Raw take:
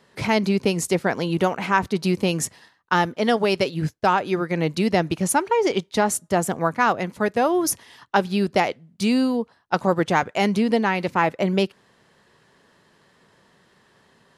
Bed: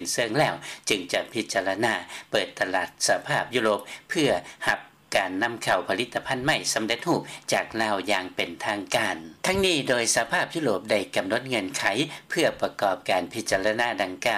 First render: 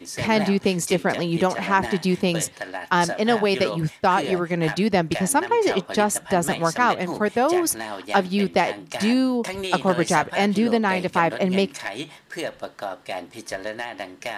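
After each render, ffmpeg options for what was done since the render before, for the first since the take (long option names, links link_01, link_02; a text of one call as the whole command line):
ffmpeg -i in.wav -i bed.wav -filter_complex "[1:a]volume=-7dB[link_01];[0:a][link_01]amix=inputs=2:normalize=0" out.wav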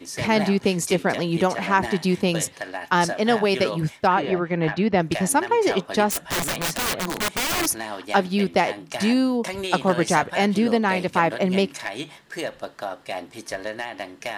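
ffmpeg -i in.wav -filter_complex "[0:a]asettb=1/sr,asplit=3[link_01][link_02][link_03];[link_01]atrim=end=4.074[link_04];[link_02]atrim=start=4.07:end=5,asetpts=PTS-STARTPTS,afade=type=in:duration=0.004:curve=qsin,afade=type=out:start_time=0.926:duration=0.004:curve=qsin,lowpass=3000[link_05];[link_03]atrim=start=4.996[link_06];[link_04][link_05]acrossfade=duration=0.004:curve1=hsin:curve2=qsin[link_07];[link_07][link_06]acrossfade=duration=0.004:curve1=qsin:curve2=hsin,asettb=1/sr,asplit=3[link_08][link_09][link_10];[link_08]atrim=end=6.104[link_11];[link_09]atrim=start=6.1:end=7.67,asetpts=PTS-STARTPTS,afade=type=in:duration=0.004:curve=qsin,afade=type=out:start_time=1.566:duration=0.004:curve=qsin,aeval=exprs='(mod(8.91*val(0)+1,2)-1)/8.91':channel_layout=same[link_12];[link_10]atrim=start=7.666[link_13];[link_11][link_12]acrossfade=duration=0.004:curve1=hsin:curve2=qsin[link_14];[link_14][link_13]acrossfade=duration=0.004:curve1=qsin:curve2=hsin" out.wav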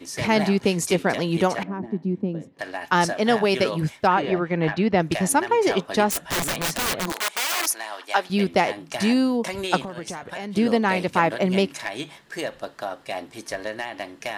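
ffmpeg -i in.wav -filter_complex "[0:a]asettb=1/sr,asplit=3[link_01][link_02][link_03];[link_01]atrim=end=1.634[link_04];[link_02]atrim=start=1.63:end=2.59,asetpts=PTS-STARTPTS,afade=type=in:duration=0.004:curve=qsin,afade=type=out:start_time=0.956:duration=0.004:curve=qsin,bandpass=frequency=240:width_type=q:width=1.8[link_05];[link_03]atrim=start=2.586[link_06];[link_04][link_05]acrossfade=duration=0.004:curve1=hsin:curve2=qsin[link_07];[link_07][link_06]acrossfade=duration=0.004:curve1=qsin:curve2=hsin,asettb=1/sr,asplit=3[link_08][link_09][link_10];[link_08]atrim=end=7.124[link_11];[link_09]atrim=start=7.12:end=8.3,asetpts=PTS-STARTPTS,afade=type=in:duration=0.004:curve=qsin,afade=type=out:start_time=1.176:duration=0.004:curve=qsin,highpass=650[link_12];[link_10]atrim=start=8.296[link_13];[link_11][link_12]acrossfade=duration=0.004:curve1=hsin:curve2=qsin[link_14];[link_14][link_13]acrossfade=duration=0.004:curve1=qsin:curve2=hsin,asettb=1/sr,asplit=3[link_15][link_16][link_17];[link_15]atrim=end=9.824[link_18];[link_16]atrim=start=9.82:end=10.57,asetpts=PTS-STARTPTS,afade=type=in:duration=0.004:curve=qsin,afade=type=out:start_time=0.746:duration=0.004:curve=qsin,acompressor=threshold=-28dB:ratio=20:attack=3.2:release=140:knee=1:detection=peak[link_19];[link_17]atrim=start=10.566[link_20];[link_18][link_19]acrossfade=duration=0.004:curve1=hsin:curve2=qsin[link_21];[link_21][link_20]acrossfade=duration=0.004:curve1=qsin:curve2=hsin" out.wav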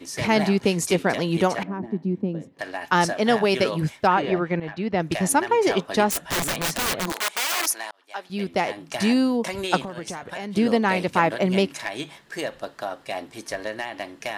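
ffmpeg -i in.wav -filter_complex "[0:a]asplit=3[link_01][link_02][link_03];[link_01]atrim=end=4.6,asetpts=PTS-STARTPTS,afade=type=out:start_time=4.596:duration=0.004:curve=hsin:silence=0.223872[link_04];[link_02]atrim=start=4.6:end=7.91,asetpts=PTS-STARTPTS,afade=type=in:duration=0.66:silence=0.223872,afade=type=out:start_time=3.306:duration=0.004:curve=hsin[link_05];[link_03]atrim=start=7.91,asetpts=PTS-STARTPTS,afade=type=in:duration=1.04[link_06];[link_04][link_05][link_06]concat=n=3:v=0:a=1" out.wav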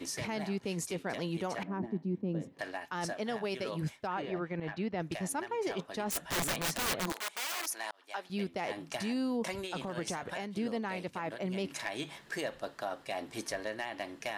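ffmpeg -i in.wav -af "areverse,acompressor=threshold=-28dB:ratio=12,areverse,alimiter=level_in=2dB:limit=-24dB:level=0:latency=1:release=297,volume=-2dB" out.wav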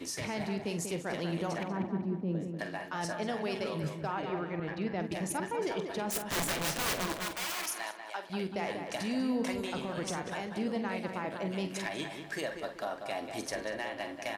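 ffmpeg -i in.wav -filter_complex "[0:a]asplit=2[link_01][link_02];[link_02]adelay=47,volume=-10.5dB[link_03];[link_01][link_03]amix=inputs=2:normalize=0,asplit=2[link_04][link_05];[link_05]adelay=191,lowpass=frequency=2400:poles=1,volume=-6dB,asplit=2[link_06][link_07];[link_07]adelay=191,lowpass=frequency=2400:poles=1,volume=0.42,asplit=2[link_08][link_09];[link_09]adelay=191,lowpass=frequency=2400:poles=1,volume=0.42,asplit=2[link_10][link_11];[link_11]adelay=191,lowpass=frequency=2400:poles=1,volume=0.42,asplit=2[link_12][link_13];[link_13]adelay=191,lowpass=frequency=2400:poles=1,volume=0.42[link_14];[link_04][link_06][link_08][link_10][link_12][link_14]amix=inputs=6:normalize=0" out.wav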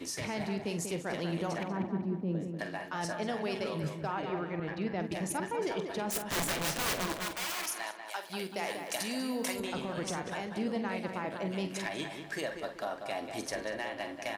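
ffmpeg -i in.wav -filter_complex "[0:a]asettb=1/sr,asplit=3[link_01][link_02][link_03];[link_01]atrim=end=8.084[link_04];[link_02]atrim=start=8.08:end=9.6,asetpts=PTS-STARTPTS,afade=type=in:duration=0.004:curve=qsin,afade=type=out:start_time=1.516:duration=0.004:curve=qsin,aemphasis=mode=production:type=bsi[link_05];[link_03]atrim=start=9.596[link_06];[link_04][link_05]acrossfade=duration=0.004:curve1=hsin:curve2=qsin[link_07];[link_07][link_06]acrossfade=duration=0.004:curve1=qsin:curve2=hsin" out.wav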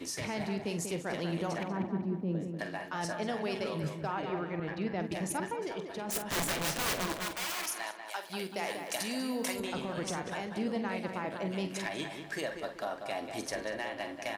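ffmpeg -i in.wav -filter_complex "[0:a]asplit=3[link_01][link_02][link_03];[link_01]atrim=end=5.542[link_04];[link_02]atrim=start=5.538:end=6.092,asetpts=PTS-STARTPTS,volume=-4dB[link_05];[link_03]atrim=start=6.088[link_06];[link_04][link_05]acrossfade=duration=0.004:curve1=hsin:curve2=hsin[link_07];[link_07][link_06]acrossfade=duration=0.004:curve1=hsin:curve2=hsin" out.wav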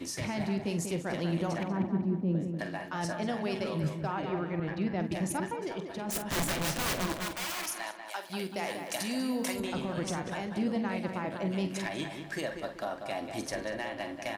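ffmpeg -i in.wav -af "lowshelf=frequency=300:gain=6,bandreject=frequency=440:width=12" out.wav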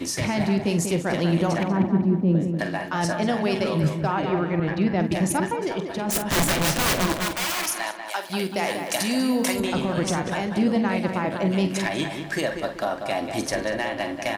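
ffmpeg -i in.wav -af "volume=9.5dB" out.wav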